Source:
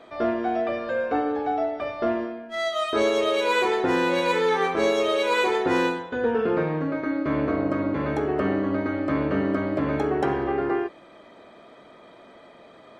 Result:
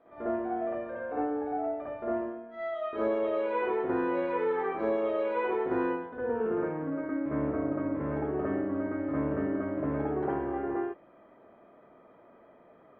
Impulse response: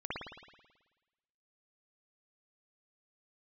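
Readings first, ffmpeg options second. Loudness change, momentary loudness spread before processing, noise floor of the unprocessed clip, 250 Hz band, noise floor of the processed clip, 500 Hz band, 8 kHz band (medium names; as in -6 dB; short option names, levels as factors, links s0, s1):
-7.0 dB, 5 LU, -50 dBFS, -6.0 dB, -58 dBFS, -6.5 dB, under -35 dB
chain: -filter_complex "[0:a]lowpass=1500[s0];[1:a]atrim=start_sample=2205,atrim=end_sample=3528[s1];[s0][s1]afir=irnorm=-1:irlink=0,volume=0.376"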